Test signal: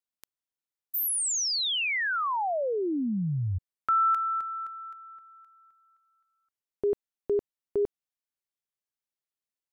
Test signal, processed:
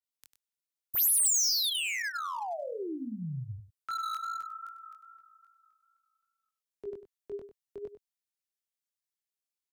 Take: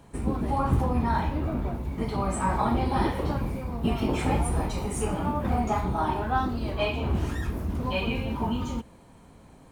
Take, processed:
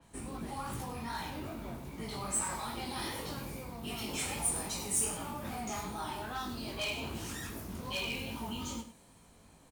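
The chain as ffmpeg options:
ffmpeg -i in.wav -filter_complex "[0:a]highshelf=frequency=2200:gain=10.5,acrossover=split=100|1500[link_01][link_02][link_03];[link_01]acompressor=threshold=-41dB:ratio=6:release=402[link_04];[link_02]alimiter=level_in=1dB:limit=-24dB:level=0:latency=1,volume=-1dB[link_05];[link_04][link_05][link_03]amix=inputs=3:normalize=0,flanger=delay=17.5:depth=5.6:speed=2.5,volume=25dB,asoftclip=hard,volume=-25dB,asplit=2[link_06][link_07];[link_07]aecho=0:1:98:0.266[link_08];[link_06][link_08]amix=inputs=2:normalize=0,adynamicequalizer=threshold=0.00501:dfrequency=4200:dqfactor=0.7:tfrequency=4200:tqfactor=0.7:attack=5:release=100:ratio=0.375:range=4:mode=boostabove:tftype=highshelf,volume=-6.5dB" out.wav

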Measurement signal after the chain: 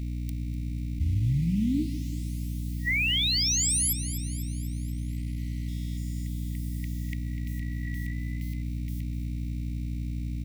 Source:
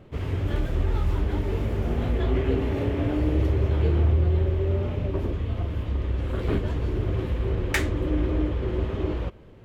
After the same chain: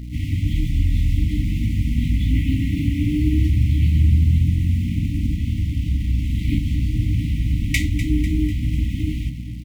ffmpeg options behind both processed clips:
ffmpeg -i in.wav -filter_complex "[0:a]aeval=exprs='val(0)+0.0158*(sin(2*PI*60*n/s)+sin(2*PI*2*60*n/s)/2+sin(2*PI*3*60*n/s)/3+sin(2*PI*4*60*n/s)/4+sin(2*PI*5*60*n/s)/5)':channel_layout=same,asplit=2[link_01][link_02];[link_02]acrusher=bits=6:mix=0:aa=0.000001,volume=-6.5dB[link_03];[link_01][link_03]amix=inputs=2:normalize=0,asplit=7[link_04][link_05][link_06][link_07][link_08][link_09][link_10];[link_05]adelay=248,afreqshift=48,volume=-12.5dB[link_11];[link_06]adelay=496,afreqshift=96,volume=-17.7dB[link_12];[link_07]adelay=744,afreqshift=144,volume=-22.9dB[link_13];[link_08]adelay=992,afreqshift=192,volume=-28.1dB[link_14];[link_09]adelay=1240,afreqshift=240,volume=-33.3dB[link_15];[link_10]adelay=1488,afreqshift=288,volume=-38.5dB[link_16];[link_04][link_11][link_12][link_13][link_14][link_15][link_16]amix=inputs=7:normalize=0,afftfilt=real='re*(1-between(b*sr/4096,320,1900))':imag='im*(1-between(b*sr/4096,320,1900))':win_size=4096:overlap=0.75,volume=2dB" out.wav

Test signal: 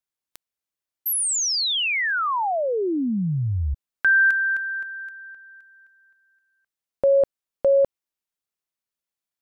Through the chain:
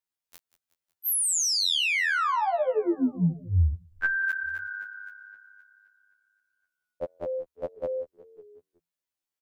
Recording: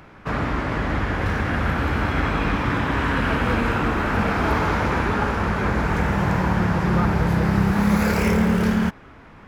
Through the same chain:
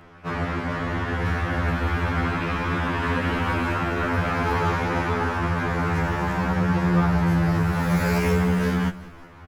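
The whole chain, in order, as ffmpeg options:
ffmpeg -i in.wav -filter_complex "[0:a]asplit=6[link_01][link_02][link_03][link_04][link_05][link_06];[link_02]adelay=184,afreqshift=-34,volume=-18dB[link_07];[link_03]adelay=368,afreqshift=-68,volume=-22.6dB[link_08];[link_04]adelay=552,afreqshift=-102,volume=-27.2dB[link_09];[link_05]adelay=736,afreqshift=-136,volume=-31.7dB[link_10];[link_06]adelay=920,afreqshift=-170,volume=-36.3dB[link_11];[link_01][link_07][link_08][link_09][link_10][link_11]amix=inputs=6:normalize=0,afftfilt=real='re*2*eq(mod(b,4),0)':imag='im*2*eq(mod(b,4),0)':win_size=2048:overlap=0.75" out.wav

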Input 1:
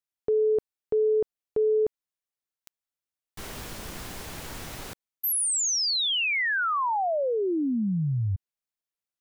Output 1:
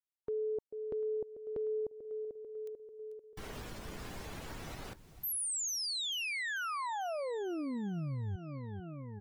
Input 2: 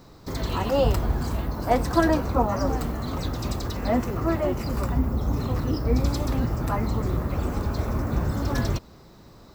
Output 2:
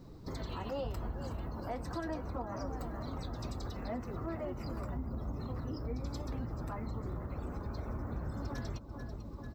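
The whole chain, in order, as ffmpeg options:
ffmpeg -i in.wav -af "aecho=1:1:442|884|1326|1768|2210|2652:0.2|0.118|0.0695|0.041|0.0242|0.0143,afftdn=noise_reduction=12:noise_floor=-45,acompressor=threshold=-38dB:ratio=3:attack=0.23:release=259:knee=6:detection=rms" out.wav

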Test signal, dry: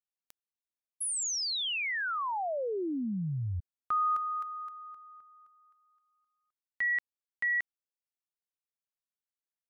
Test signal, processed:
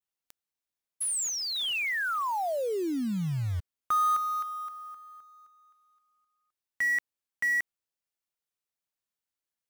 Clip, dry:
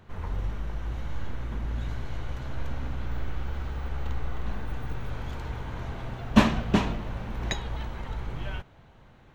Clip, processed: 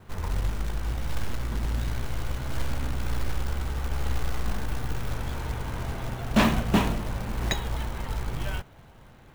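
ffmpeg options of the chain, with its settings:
ffmpeg -i in.wav -af "adynamicequalizer=threshold=0.00251:dfrequency=5300:dqfactor=1.6:tfrequency=5300:tqfactor=1.6:attack=5:release=100:ratio=0.438:range=3:mode=cutabove:tftype=bell,volume=18dB,asoftclip=hard,volume=-18dB,acrusher=bits=4:mode=log:mix=0:aa=0.000001,volume=3dB" out.wav

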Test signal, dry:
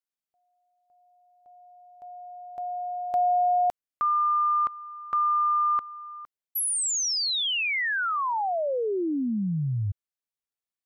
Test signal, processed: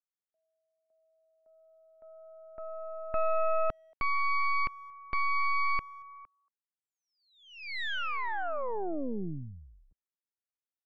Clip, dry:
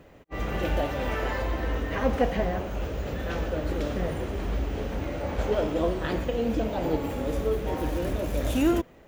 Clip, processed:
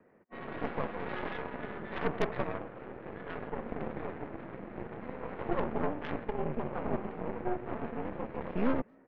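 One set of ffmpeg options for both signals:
ffmpeg -i in.wav -filter_complex "[0:a]highpass=frequency=220:width_type=q:width=0.5412,highpass=frequency=220:width_type=q:width=1.307,lowpass=frequency=2200:width_type=q:width=0.5176,lowpass=frequency=2200:width_type=q:width=0.7071,lowpass=frequency=2200:width_type=q:width=1.932,afreqshift=-74,asplit=2[link_01][link_02];[link_02]adelay=230,highpass=300,lowpass=3400,asoftclip=type=hard:threshold=-21.5dB,volume=-26dB[link_03];[link_01][link_03]amix=inputs=2:normalize=0,aeval=exprs='0.266*(cos(1*acos(clip(val(0)/0.266,-1,1)))-cos(1*PI/2))+0.0841*(cos(6*acos(clip(val(0)/0.266,-1,1)))-cos(6*PI/2))+0.00335*(cos(7*acos(clip(val(0)/0.266,-1,1)))-cos(7*PI/2))':channel_layout=same,volume=-8.5dB" out.wav

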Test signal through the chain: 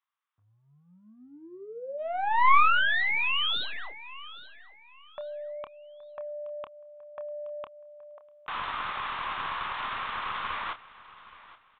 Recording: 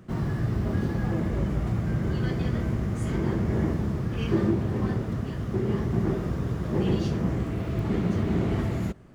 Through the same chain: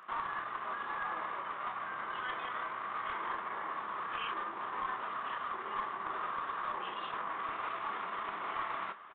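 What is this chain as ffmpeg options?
ffmpeg -i in.wav -filter_complex "[0:a]acompressor=threshold=-25dB:ratio=6,alimiter=level_in=2dB:limit=-24dB:level=0:latency=1:release=10,volume=-2dB,highpass=frequency=1100:width_type=q:width=4.5,aresample=11025,aeval=exprs='clip(val(0),-1,0.02)':channel_layout=same,aresample=44100,aresample=8000,aresample=44100,asplit=2[link_01][link_02];[link_02]adelay=28,volume=-10dB[link_03];[link_01][link_03]amix=inputs=2:normalize=0,asplit=2[link_04][link_05];[link_05]aecho=0:1:823|1646|2469:0.126|0.0365|0.0106[link_06];[link_04][link_06]amix=inputs=2:normalize=0,volume=2dB" out.wav

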